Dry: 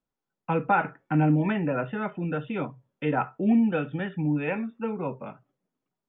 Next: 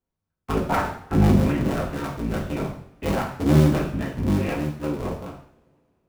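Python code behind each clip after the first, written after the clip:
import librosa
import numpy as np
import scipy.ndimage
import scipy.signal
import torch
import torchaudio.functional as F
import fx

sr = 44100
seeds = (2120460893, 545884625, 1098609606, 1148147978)

y = fx.cycle_switch(x, sr, every=3, mode='inverted')
y = fx.low_shelf(y, sr, hz=320.0, db=8.5)
y = fx.rev_double_slope(y, sr, seeds[0], early_s=0.58, late_s=2.6, knee_db=-26, drr_db=-1.5)
y = y * librosa.db_to_amplitude(-5.5)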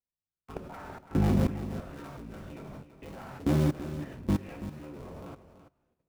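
y = fx.level_steps(x, sr, step_db=20)
y = y + 10.0 ** (-12.0 / 20.0) * np.pad(y, (int(332 * sr / 1000.0), 0))[:len(y)]
y = y * librosa.db_to_amplitude(-3.5)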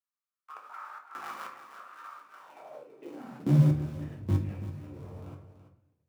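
y = fx.room_shoebox(x, sr, seeds[1], volume_m3=60.0, walls='mixed', distance_m=0.47)
y = fx.filter_sweep_highpass(y, sr, from_hz=1200.0, to_hz=90.0, start_s=2.34, end_s=3.84, q=5.5)
y = y * librosa.db_to_amplitude(-7.0)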